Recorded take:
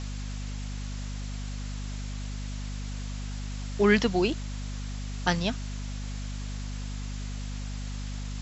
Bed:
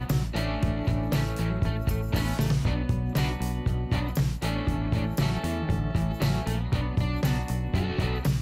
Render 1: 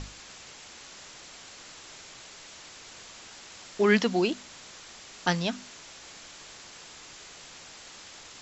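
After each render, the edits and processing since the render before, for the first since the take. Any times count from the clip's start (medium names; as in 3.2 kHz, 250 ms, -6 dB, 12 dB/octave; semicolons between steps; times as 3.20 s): hum notches 50/100/150/200/250 Hz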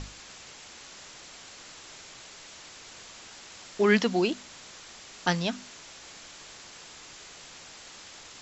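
no audible change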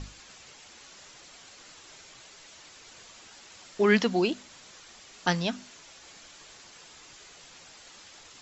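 noise reduction 6 dB, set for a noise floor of -48 dBFS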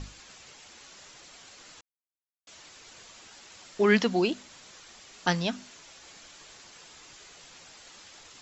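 1.81–2.47 s: mute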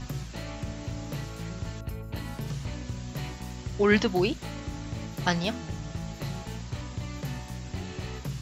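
add bed -9.5 dB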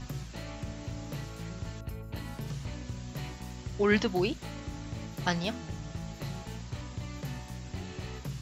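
trim -3.5 dB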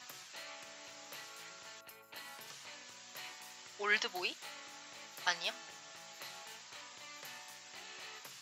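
Bessel high-pass 1.2 kHz, order 2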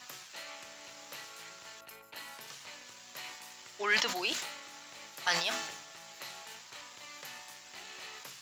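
waveshaping leveller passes 1; decay stretcher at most 54 dB/s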